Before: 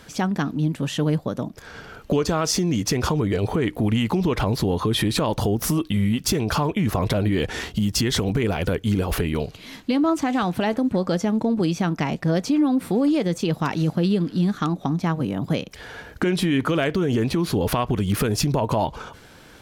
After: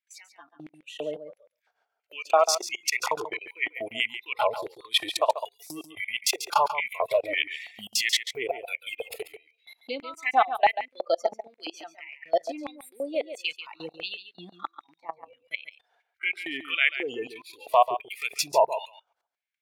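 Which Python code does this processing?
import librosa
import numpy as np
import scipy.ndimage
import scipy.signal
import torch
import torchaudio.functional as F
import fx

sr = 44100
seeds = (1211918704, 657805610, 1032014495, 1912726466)

y = fx.noise_reduce_blind(x, sr, reduce_db=26)
y = fx.ellip_bandstop(y, sr, low_hz=200.0, high_hz=420.0, order=3, stop_db=40, at=(5.11, 5.66))
y = fx.level_steps(y, sr, step_db=24)
y = fx.filter_lfo_highpass(y, sr, shape='square', hz=1.5, low_hz=720.0, high_hz=2200.0, q=5.0)
y = y + 10.0 ** (-11.0 / 20.0) * np.pad(y, (int(140 * sr / 1000.0), 0))[:len(y)]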